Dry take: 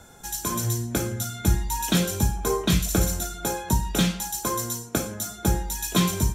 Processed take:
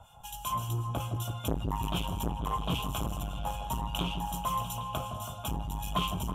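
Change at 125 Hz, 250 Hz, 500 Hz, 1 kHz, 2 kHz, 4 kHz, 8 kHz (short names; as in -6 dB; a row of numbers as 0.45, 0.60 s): -8.0, -11.0, -11.0, -1.5, -11.0, -7.0, -16.5 dB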